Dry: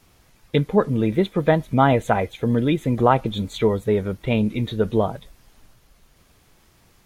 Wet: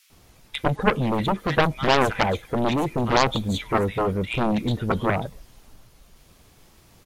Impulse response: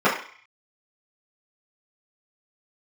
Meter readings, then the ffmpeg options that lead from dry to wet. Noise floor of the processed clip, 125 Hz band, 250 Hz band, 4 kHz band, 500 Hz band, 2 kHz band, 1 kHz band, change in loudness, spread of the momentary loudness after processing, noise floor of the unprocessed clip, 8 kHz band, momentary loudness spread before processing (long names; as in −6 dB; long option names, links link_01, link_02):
−55 dBFS, −3.5 dB, −3.5 dB, +5.0 dB, −3.5 dB, +4.0 dB, 0.0 dB, −2.0 dB, 7 LU, −58 dBFS, can't be measured, 6 LU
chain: -filter_complex "[0:a]acrossover=split=1700[link_01][link_02];[link_01]adelay=100[link_03];[link_03][link_02]amix=inputs=2:normalize=0,aeval=exprs='0.668*(cos(1*acos(clip(val(0)/0.668,-1,1)))-cos(1*PI/2))+0.335*(cos(7*acos(clip(val(0)/0.668,-1,1)))-cos(7*PI/2))':channel_layout=same,volume=-5dB"